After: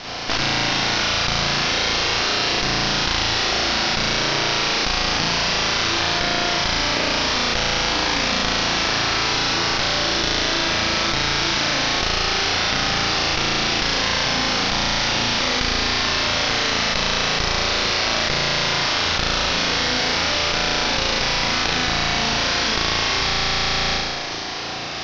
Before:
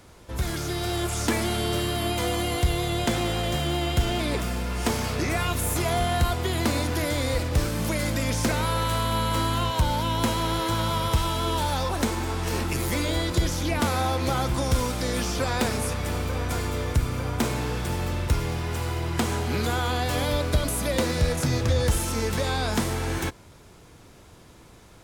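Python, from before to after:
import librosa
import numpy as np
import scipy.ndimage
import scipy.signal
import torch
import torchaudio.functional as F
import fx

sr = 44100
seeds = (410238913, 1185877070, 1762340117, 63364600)

y = fx.spec_flatten(x, sr, power=0.14)
y = scipy.signal.sosfilt(scipy.signal.butter(2, 58.0, 'highpass', fs=sr, output='sos'), y)
y = fx.peak_eq(y, sr, hz=730.0, db=8.5, octaves=0.2)
y = fx.cheby_harmonics(y, sr, harmonics=(7, 8), levels_db=(-18, -13), full_scale_db=-1.5)
y = scipy.signal.sosfilt(scipy.signal.butter(12, 5700.0, 'lowpass', fs=sr, output='sos'), y)
y = fx.room_flutter(y, sr, wall_m=6.1, rt60_s=1.4)
y = fx.env_flatten(y, sr, amount_pct=100)
y = y * 10.0 ** (-1.0 / 20.0)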